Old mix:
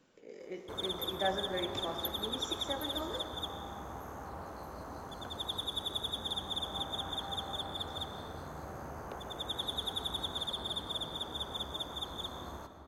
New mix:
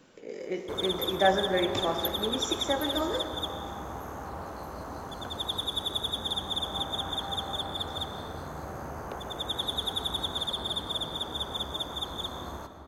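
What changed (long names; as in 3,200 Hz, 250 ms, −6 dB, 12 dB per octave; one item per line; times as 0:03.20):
speech +10.0 dB
background +5.5 dB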